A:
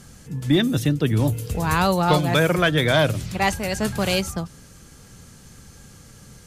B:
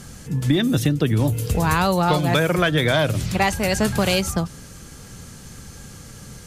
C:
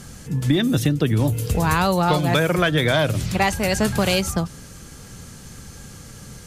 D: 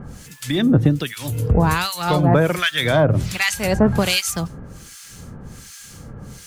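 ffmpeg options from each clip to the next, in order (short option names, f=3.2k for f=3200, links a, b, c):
-af "acompressor=threshold=-21dB:ratio=6,volume=6dB"
-af anull
-filter_complex "[0:a]acrusher=bits=8:mix=0:aa=0.000001,acrossover=split=1400[a][b];[a]aeval=exprs='val(0)*(1-1/2+1/2*cos(2*PI*1.3*n/s))':c=same[c];[b]aeval=exprs='val(0)*(1-1/2-1/2*cos(2*PI*1.3*n/s))':c=same[d];[c][d]amix=inputs=2:normalize=0,volume=6dB"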